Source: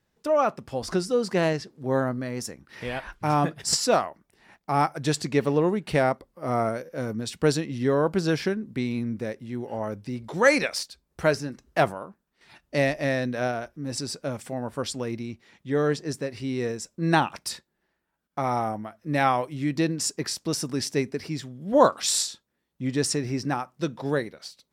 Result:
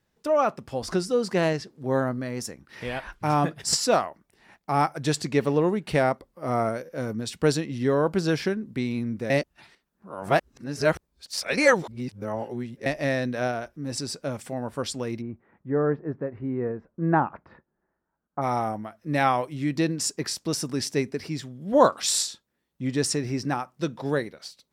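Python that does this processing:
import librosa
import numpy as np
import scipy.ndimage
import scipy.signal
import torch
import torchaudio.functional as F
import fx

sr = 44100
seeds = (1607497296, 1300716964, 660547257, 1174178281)

y = fx.lowpass(x, sr, hz=1500.0, slope=24, at=(15.2, 18.41), fade=0.02)
y = fx.edit(y, sr, fx.reverse_span(start_s=9.3, length_s=3.56), tone=tone)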